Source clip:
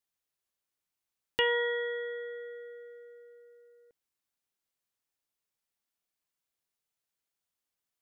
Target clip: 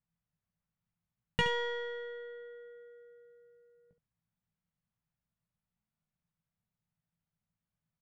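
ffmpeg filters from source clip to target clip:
ffmpeg -i in.wav -af "adynamicsmooth=sensitivity=1:basefreq=2000,lowshelf=frequency=240:width_type=q:width=3:gain=12,aecho=1:1:18|71:0.473|0.282" out.wav

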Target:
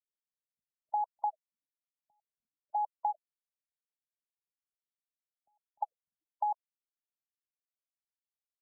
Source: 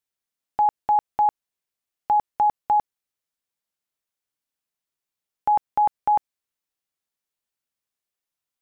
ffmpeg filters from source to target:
ffmpeg -i in.wav -filter_complex "[0:a]afftfilt=real='re*gte(hypot(re,im),0.1)':imag='im*gte(hypot(re,im),0.1)':win_size=1024:overlap=0.75,acompressor=threshold=-23dB:ratio=12,acrossover=split=220[link_01][link_02];[link_02]adelay=350[link_03];[link_01][link_03]amix=inputs=2:normalize=0,afftfilt=real='re*lt(b*sr/1024,250*pow(1600/250,0.5+0.5*sin(2*PI*1.1*pts/sr)))':imag='im*lt(b*sr/1024,250*pow(1600/250,0.5+0.5*sin(2*PI*1.1*pts/sr)))':win_size=1024:overlap=0.75,volume=-5.5dB" out.wav

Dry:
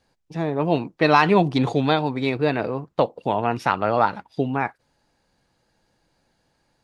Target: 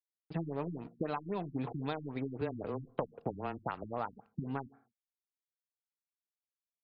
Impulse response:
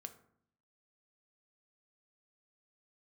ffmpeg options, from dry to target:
-filter_complex "[0:a]acompressor=threshold=-29dB:ratio=16,aeval=exprs='sgn(val(0))*max(abs(val(0))-0.00355,0)':channel_layout=same,asettb=1/sr,asplit=3[link_01][link_02][link_03];[link_01]atrim=end=2.414[link_04];[link_02]atrim=start=2.41:end=3.84,asetpts=PTS-STARTPTS,afade=type=in:duration=0.004:curve=qsin,afade=type=out:start_time=1.426:duration=0.004:curve=qsin,afreqshift=-13[link_05];[link_03]atrim=start=3.836[link_06];[link_04][link_05]acrossfade=duration=0.004:curve1=hsin:curve2=qsin[link_07];[link_07][link_06]acrossfade=duration=0.004:curve1=qsin:curve2=hsin,asplit=2[link_08][link_09];[1:a]atrim=start_sample=2205,afade=type=out:start_time=0.3:duration=0.01,atrim=end_sample=13671[link_10];[link_09][link_10]afir=irnorm=-1:irlink=0,volume=-3dB[link_11];[link_08][link_11]amix=inputs=2:normalize=0,afftfilt=real='re*lt(b*sr/1024,290*pow(5200/290,0.5+0.5*sin(2*PI*3.8*pts/sr)))':imag='im*lt(b*sr/1024,290*pow(5200/290,0.5+0.5*sin(2*PI*3.8*pts/sr)))':win_size=1024:overlap=0.75,volume=-4.5dB"

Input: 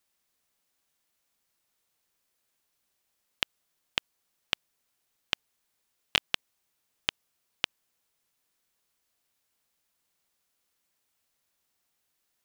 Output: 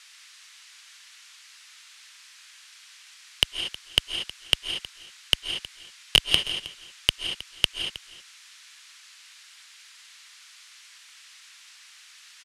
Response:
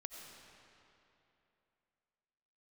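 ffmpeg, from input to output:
-filter_complex "[0:a]lowpass=7400,acrossover=split=1300[link_01][link_02];[link_01]acrusher=bits=5:dc=4:mix=0:aa=0.000001[link_03];[link_03][link_02]amix=inputs=2:normalize=0,asubboost=boost=8:cutoff=51,asplit=2[link_04][link_05];[link_05]highpass=frequency=720:poles=1,volume=34dB,asoftclip=type=tanh:threshold=-4dB[link_06];[link_04][link_06]amix=inputs=2:normalize=0,lowpass=frequency=4900:poles=1,volume=-6dB,asplit=2[link_07][link_08];[link_08]asoftclip=type=hard:threshold=-18.5dB,volume=-3.5dB[link_09];[link_07][link_09]amix=inputs=2:normalize=0,aecho=1:1:316:0.126[link_10];[1:a]atrim=start_sample=2205,afade=type=out:start_time=0.18:duration=0.01,atrim=end_sample=8379,asetrate=23814,aresample=44100[link_11];[link_10][link_11]afir=irnorm=-1:irlink=0,volume=4.5dB"

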